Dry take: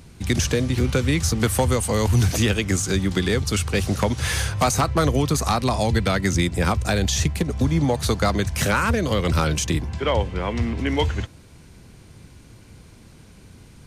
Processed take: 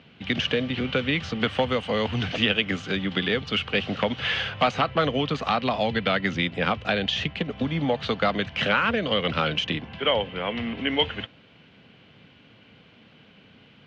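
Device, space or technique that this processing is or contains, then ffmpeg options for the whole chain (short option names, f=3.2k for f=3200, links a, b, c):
kitchen radio: -af "highpass=220,equalizer=f=350:t=q:w=4:g=-9,equalizer=f=970:t=q:w=4:g=-5,equalizer=f=3k:t=q:w=4:g=10,lowpass=f=3.4k:w=0.5412,lowpass=f=3.4k:w=1.3066"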